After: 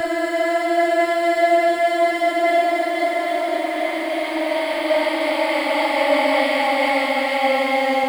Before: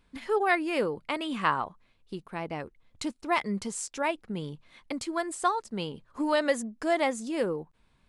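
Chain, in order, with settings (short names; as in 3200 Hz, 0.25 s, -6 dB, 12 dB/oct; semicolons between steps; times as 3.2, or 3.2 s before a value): spectral dilation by 60 ms; bit-crush 8-bit; Paulstretch 43×, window 0.10 s, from 6.89; on a send: reverse echo 47 ms -5.5 dB; on the sum: three-band expander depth 40%; gain +2 dB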